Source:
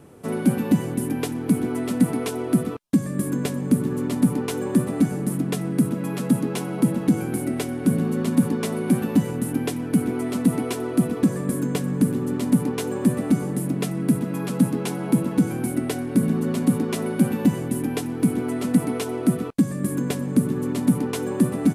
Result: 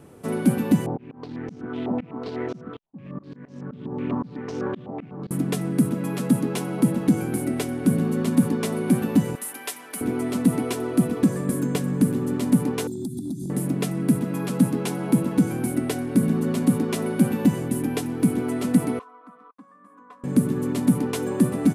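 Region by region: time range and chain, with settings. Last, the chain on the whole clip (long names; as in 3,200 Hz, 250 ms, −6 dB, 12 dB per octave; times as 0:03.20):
0:00.86–0:05.31: running median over 25 samples + volume swells 436 ms + low-pass on a step sequencer 8 Hz 830–5,800 Hz
0:09.35–0:10.01: high-pass filter 910 Hz + high-shelf EQ 9,500 Hz +6.5 dB + comb filter 5.1 ms, depth 33%
0:12.87–0:13.50: linear-phase brick-wall band-stop 390–3,300 Hz + downward compressor 12 to 1, threshold −26 dBFS
0:18.99–0:20.24: resonant band-pass 1,100 Hz, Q 13 + comb filter 4 ms, depth 94%
whole clip: no processing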